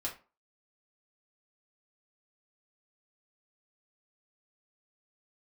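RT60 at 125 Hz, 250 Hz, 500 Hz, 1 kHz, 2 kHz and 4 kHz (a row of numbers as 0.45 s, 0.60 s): 0.30 s, 0.35 s, 0.35 s, 0.35 s, 0.30 s, 0.20 s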